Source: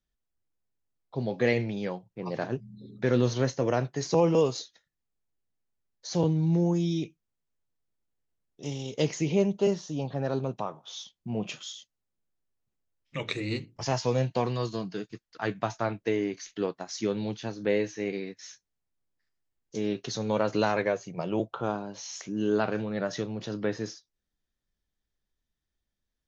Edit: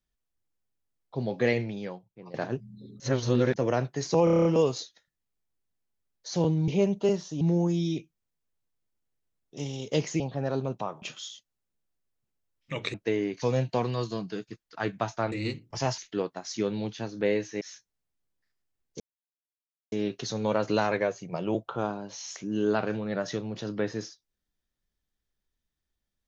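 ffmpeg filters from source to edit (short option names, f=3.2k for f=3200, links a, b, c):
-filter_complex "[0:a]asplit=21[a][b][c][d][e][f][g][h][i][j][k][l][m][n][o][p][q][r][s][t][u];[a]atrim=end=2.34,asetpts=PTS-STARTPTS,afade=t=out:st=1.46:d=0.88:silence=0.188365[v];[b]atrim=start=2.34:end=3.002,asetpts=PTS-STARTPTS,afade=t=in:d=0.004:c=hsin:silence=0.188365[w];[c]atrim=start=2.998:end=3.562,asetpts=PTS-STARTPTS,areverse[x];[d]atrim=start=3.558:end=4.272[y];[e]atrim=start=4.238:end=4.272[z];[f]atrim=start=4.238:end=4.272[aa];[g]atrim=start=4.238:end=4.272[ab];[h]atrim=start=4.238:end=4.272[ac];[i]atrim=start=4.238:end=4.272[ad];[j]atrim=start=4.238:end=4.272[ae];[k]atrim=start=4.238:end=6.472[af];[l]atrim=start=9.258:end=9.992[ag];[m]atrim=start=6.468:end=9.262[ah];[n]atrim=start=9.988:end=10.812[ai];[o]atrim=start=11.458:end=13.382[aj];[p]atrim=start=15.938:end=16.422[ak];[q]atrim=start=14.038:end=15.942[al];[r]atrim=start=13.378:end=14.042[am];[s]atrim=start=16.418:end=18.052[an];[t]atrim=start=18.378:end=19.77,asetpts=PTS-STARTPTS,afade=t=out:st=1.388:d=0.004:c=hsin,apad=pad_dur=0.92[ao];[u]atrim=start=19.77,asetpts=PTS-STARTPTS,afade=t=in:d=0.004:c=hsin[ap];[v][w]concat=n=2:v=0:a=1[aq];[aq][x]acrossfade=d=0.004:c1=hsin:c2=hsin[ar];[ar][y]acrossfade=d=0.004:c1=hsin:c2=hsin[as];[as][z]acrossfade=d=0.004:c1=hsin:c2=hsin[at];[at][aa]acrossfade=d=0.004:c1=hsin:c2=hsin[au];[au][ab]acrossfade=d=0.004:c1=hsin:c2=hsin[av];[av][ac]acrossfade=d=0.004:c1=hsin:c2=hsin[aw];[aw][ad]acrossfade=d=0.004:c1=hsin:c2=hsin[ax];[ax][ae]acrossfade=d=0.004:c1=hsin:c2=hsin[ay];[ay][af]acrossfade=d=0.004:c1=hsin:c2=hsin[az];[az][ag]acrossfade=d=0.004:c1=hsin:c2=hsin[ba];[ba][ah]acrossfade=d=0.004:c1=hsin:c2=hsin[bb];[bb][ai]acrossfade=d=0.004:c1=hsin:c2=hsin[bc];[bc][aj]acrossfade=d=0.004:c1=hsin:c2=hsin[bd];[bd][ak]acrossfade=d=0.004:c1=hsin:c2=hsin[be];[be][al]acrossfade=d=0.004:c1=hsin:c2=hsin[bf];[bf][am]acrossfade=d=0.004:c1=hsin:c2=hsin[bg];[bg][an]acrossfade=d=0.004:c1=hsin:c2=hsin[bh];[ao][ap]concat=n=2:v=0:a=1[bi];[bh][bi]acrossfade=d=0.004:c1=hsin:c2=hsin"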